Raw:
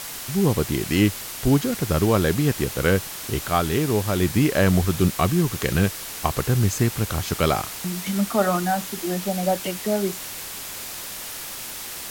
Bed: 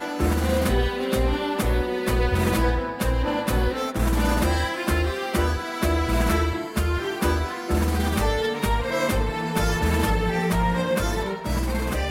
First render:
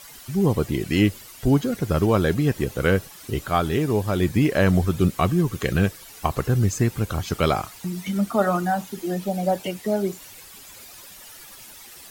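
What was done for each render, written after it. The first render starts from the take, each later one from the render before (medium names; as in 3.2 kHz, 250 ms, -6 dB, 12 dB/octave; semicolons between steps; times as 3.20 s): noise reduction 13 dB, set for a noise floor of -34 dBFS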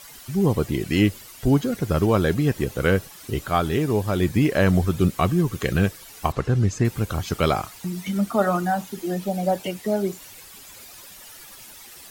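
6.32–6.85 s: distance through air 68 m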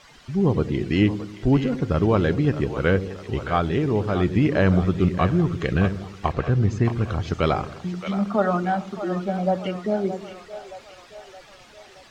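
distance through air 150 m; two-band feedback delay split 480 Hz, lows 93 ms, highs 621 ms, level -10.5 dB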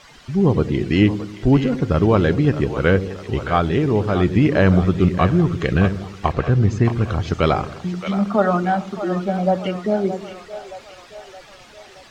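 trim +4 dB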